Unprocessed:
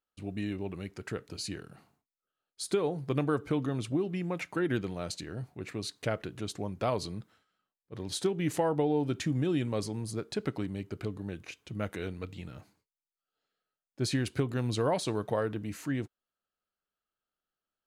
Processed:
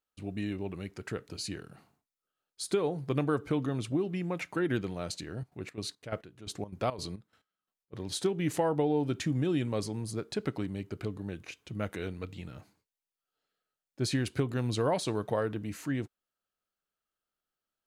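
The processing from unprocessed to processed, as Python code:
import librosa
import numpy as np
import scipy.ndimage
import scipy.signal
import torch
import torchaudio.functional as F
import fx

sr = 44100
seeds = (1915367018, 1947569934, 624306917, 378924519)

y = fx.step_gate(x, sr, bpm=174, pattern='.x...xx.xx.xx.', floor_db=-12.0, edge_ms=4.5, at=(5.29, 7.97), fade=0.02)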